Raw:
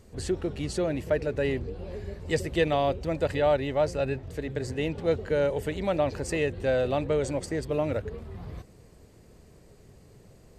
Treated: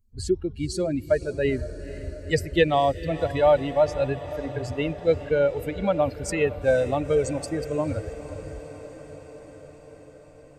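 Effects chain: per-bin expansion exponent 2; diffused feedback echo 0.487 s, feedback 72%, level -15 dB; gain +7.5 dB

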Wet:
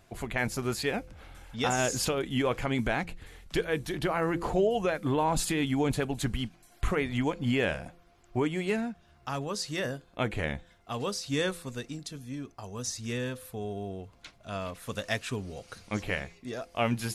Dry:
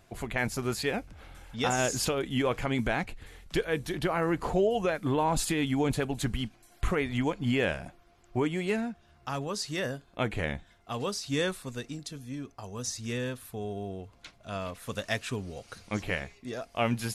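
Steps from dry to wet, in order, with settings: de-hum 170.6 Hz, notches 3

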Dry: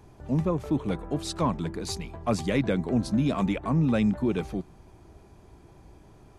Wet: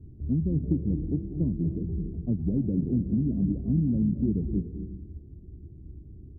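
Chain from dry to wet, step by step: inverse Chebyshev low-pass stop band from 1400 Hz, stop band 70 dB; bell 75 Hz +8 dB 0.65 oct; compressor, threshold -27 dBFS, peak gain reduction 8 dB; on a send: reverb RT60 1.0 s, pre-delay 0.185 s, DRR 8.5 dB; on the sum: gain +4.5 dB

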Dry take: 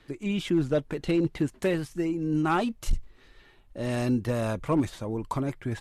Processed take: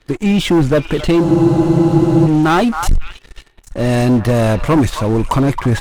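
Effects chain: low shelf 69 Hz +9 dB; vocal rider 2 s; on a send: delay with a stepping band-pass 0.269 s, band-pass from 1100 Hz, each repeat 1.4 oct, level -8.5 dB; on the sum: sample leveller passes 3; in parallel at -4 dB: one-sided clip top -18 dBFS; on the sum: spectral freeze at 1.25, 1.02 s

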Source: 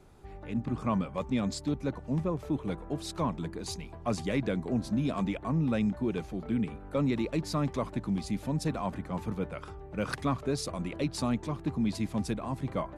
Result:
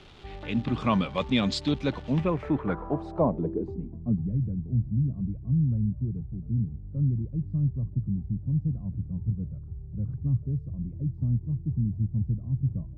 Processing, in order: high shelf 4600 Hz +10.5 dB; crackle 520/s -47 dBFS; low-pass sweep 3400 Hz -> 120 Hz, 2.1–4.39; gain +4.5 dB

